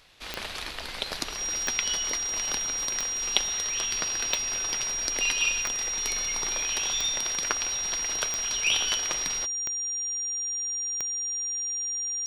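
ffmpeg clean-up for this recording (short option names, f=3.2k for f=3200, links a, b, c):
-af "adeclick=t=4,bandreject=f=5.7k:w=30"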